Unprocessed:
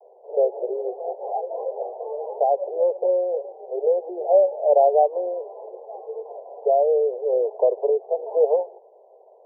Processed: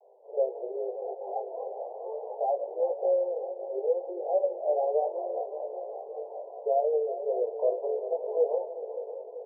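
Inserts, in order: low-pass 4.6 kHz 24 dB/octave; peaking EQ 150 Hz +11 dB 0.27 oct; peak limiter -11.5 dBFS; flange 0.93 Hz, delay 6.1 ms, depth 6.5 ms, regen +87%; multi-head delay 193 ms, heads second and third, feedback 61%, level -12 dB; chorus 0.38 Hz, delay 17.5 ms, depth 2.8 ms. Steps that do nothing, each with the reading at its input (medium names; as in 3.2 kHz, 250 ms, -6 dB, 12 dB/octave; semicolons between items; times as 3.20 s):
low-pass 4.6 kHz: input has nothing above 910 Hz; peaking EQ 150 Hz: input has nothing below 340 Hz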